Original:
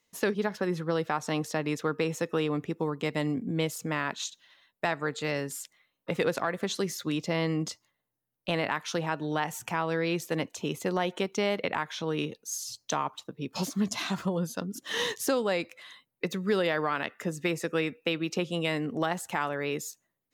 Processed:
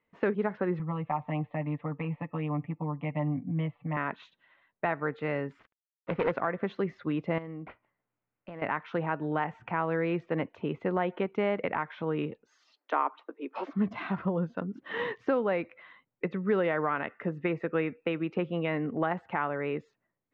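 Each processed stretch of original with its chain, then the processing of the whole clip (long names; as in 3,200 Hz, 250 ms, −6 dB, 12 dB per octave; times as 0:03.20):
0:00.79–0:03.97: high-frequency loss of the air 360 metres + phaser with its sweep stopped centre 1,500 Hz, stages 6 + comb filter 6.9 ms, depth 87%
0:05.59–0:06.32: phase distortion by the signal itself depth 0.33 ms + high-shelf EQ 3,800 Hz −3.5 dB + log-companded quantiser 4 bits
0:07.38–0:08.62: downward compressor 3 to 1, threshold −41 dBFS + linearly interpolated sample-rate reduction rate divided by 6×
0:12.46–0:13.73: Butterworth high-pass 270 Hz 48 dB per octave + parametric band 1,500 Hz +4 dB 1.7 octaves
whole clip: low-pass filter 2,200 Hz 24 dB per octave; notch filter 1,700 Hz, Q 23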